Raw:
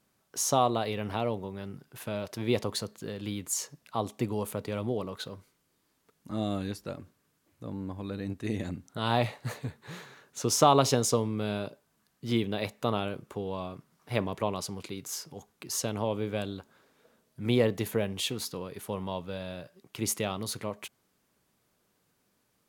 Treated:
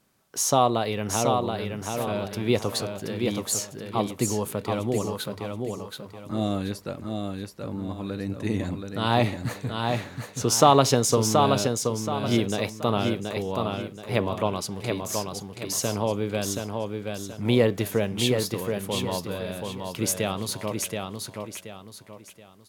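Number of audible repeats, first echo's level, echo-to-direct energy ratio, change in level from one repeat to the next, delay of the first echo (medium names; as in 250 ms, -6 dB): 4, -4.5 dB, -4.0 dB, -9.5 dB, 727 ms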